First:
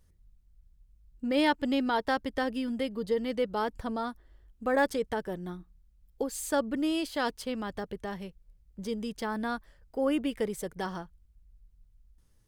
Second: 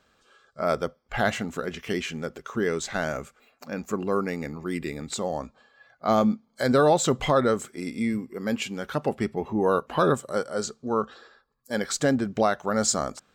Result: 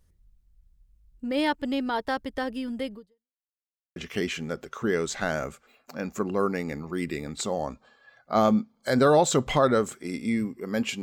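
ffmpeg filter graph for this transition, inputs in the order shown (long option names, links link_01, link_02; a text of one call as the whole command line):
ffmpeg -i cue0.wav -i cue1.wav -filter_complex "[0:a]apad=whole_dur=11.02,atrim=end=11.02,asplit=2[link_01][link_02];[link_01]atrim=end=3.41,asetpts=PTS-STARTPTS,afade=type=out:start_time=2.94:duration=0.47:curve=exp[link_03];[link_02]atrim=start=3.41:end=3.96,asetpts=PTS-STARTPTS,volume=0[link_04];[1:a]atrim=start=1.69:end=8.75,asetpts=PTS-STARTPTS,afade=type=in:duration=0.004:curve=hsin[link_05];[link_03][link_04][link_05]concat=n=3:v=0:a=1" out.wav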